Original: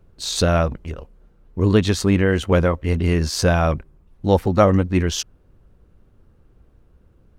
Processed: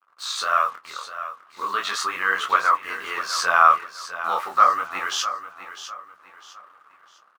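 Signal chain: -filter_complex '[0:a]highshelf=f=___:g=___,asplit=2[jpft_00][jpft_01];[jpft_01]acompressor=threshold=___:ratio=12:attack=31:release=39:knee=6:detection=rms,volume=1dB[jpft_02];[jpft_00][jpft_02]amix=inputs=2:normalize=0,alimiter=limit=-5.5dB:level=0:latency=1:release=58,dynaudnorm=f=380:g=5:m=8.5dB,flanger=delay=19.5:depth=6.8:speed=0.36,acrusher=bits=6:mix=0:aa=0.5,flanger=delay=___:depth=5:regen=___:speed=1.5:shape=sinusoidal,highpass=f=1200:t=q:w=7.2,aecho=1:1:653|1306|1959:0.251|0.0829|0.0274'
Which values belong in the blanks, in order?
6200, -8, -30dB, 9.9, -50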